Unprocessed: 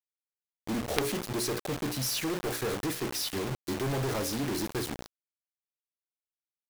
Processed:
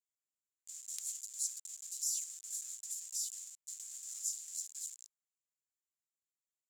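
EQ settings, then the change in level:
resonant band-pass 7,200 Hz, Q 10
first difference
+10.0 dB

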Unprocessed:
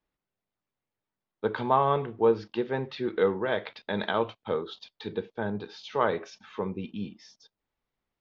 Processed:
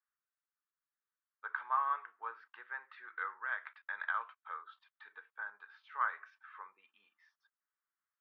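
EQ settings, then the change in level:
flat-topped band-pass 1,400 Hz, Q 2.1
first difference
spectral tilt −3 dB per octave
+14.0 dB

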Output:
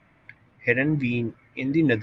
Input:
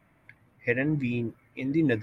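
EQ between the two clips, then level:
high-frequency loss of the air 120 metres
high-shelf EQ 2,200 Hz +8.5 dB
+3.5 dB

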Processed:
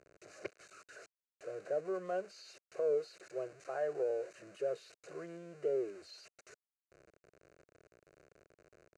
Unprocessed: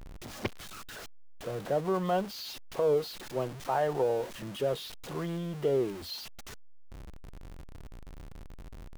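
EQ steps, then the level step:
loudspeaker in its box 320–6,800 Hz, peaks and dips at 500 Hz −3 dB, 770 Hz −6 dB, 1,200 Hz −8 dB, 1,900 Hz −9 dB, 5,300 Hz −9 dB
phaser with its sweep stopped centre 910 Hz, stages 6
−2.0 dB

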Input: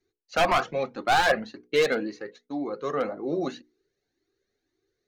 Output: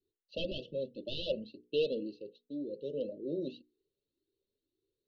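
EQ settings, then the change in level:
linear-phase brick-wall band-stop 640–2,600 Hz
Butterworth low-pass 4,300 Hz 36 dB per octave
−8.0 dB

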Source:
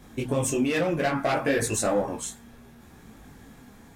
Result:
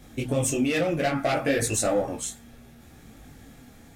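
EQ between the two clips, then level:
thirty-one-band graphic EQ 200 Hz −6 dB, 400 Hz −5 dB, 1,000 Hz −11 dB, 1,600 Hz −4 dB
+2.0 dB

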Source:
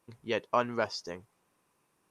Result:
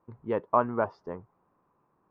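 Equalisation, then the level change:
low-pass with resonance 1,100 Hz, resonance Q 1.8
low-shelf EQ 430 Hz +6 dB
−1.0 dB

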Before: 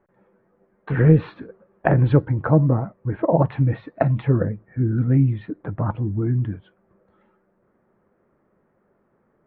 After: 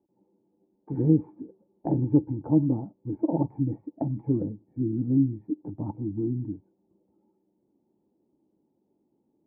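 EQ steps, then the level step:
formant resonators in series u
high-pass filter 49 Hz
+2.5 dB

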